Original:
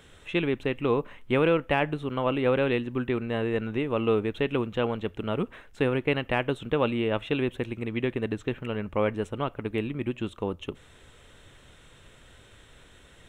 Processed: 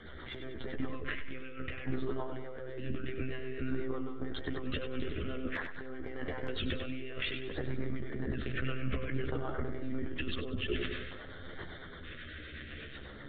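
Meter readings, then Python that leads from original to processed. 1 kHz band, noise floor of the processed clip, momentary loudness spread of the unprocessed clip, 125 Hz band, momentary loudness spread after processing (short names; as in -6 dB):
-14.0 dB, -47 dBFS, 8 LU, -7.5 dB, 9 LU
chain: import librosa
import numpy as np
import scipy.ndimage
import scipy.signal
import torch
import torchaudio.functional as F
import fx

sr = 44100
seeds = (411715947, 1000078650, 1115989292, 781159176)

p1 = fx.lpc_monotone(x, sr, seeds[0], pitch_hz=130.0, order=16)
p2 = fx.peak_eq(p1, sr, hz=1800.0, db=6.5, octaves=1.0)
p3 = fx.over_compress(p2, sr, threshold_db=-36.0, ratio=-1.0)
p4 = fx.peak_eq(p3, sr, hz=160.0, db=-7.5, octaves=0.31)
p5 = fx.hum_notches(p4, sr, base_hz=50, count=2)
p6 = fx.filter_lfo_notch(p5, sr, shape='square', hz=0.54, low_hz=880.0, high_hz=2600.0, q=1.2)
p7 = fx.chorus_voices(p6, sr, voices=2, hz=0.18, base_ms=13, depth_ms=1.6, mix_pct=40)
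p8 = fx.rotary(p7, sr, hz=8.0)
p9 = p8 + fx.echo_feedback(p8, sr, ms=97, feedback_pct=48, wet_db=-9.0, dry=0)
p10 = fx.sustainer(p9, sr, db_per_s=32.0)
y = F.gain(torch.from_numpy(p10), 2.0).numpy()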